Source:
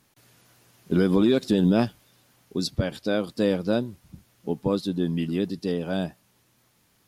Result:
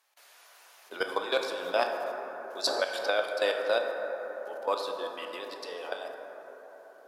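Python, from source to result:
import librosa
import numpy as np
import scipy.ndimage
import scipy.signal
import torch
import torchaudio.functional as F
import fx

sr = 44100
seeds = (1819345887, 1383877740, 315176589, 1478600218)

y = scipy.signal.sosfilt(scipy.signal.butter(4, 620.0, 'highpass', fs=sr, output='sos'), x)
y = fx.high_shelf(y, sr, hz=5100.0, db=-5.0)
y = fx.level_steps(y, sr, step_db=16)
y = fx.rev_plate(y, sr, seeds[0], rt60_s=4.8, hf_ratio=0.25, predelay_ms=0, drr_db=2.5)
y = fx.band_squash(y, sr, depth_pct=100, at=(2.67, 3.19))
y = F.gain(torch.from_numpy(y), 6.5).numpy()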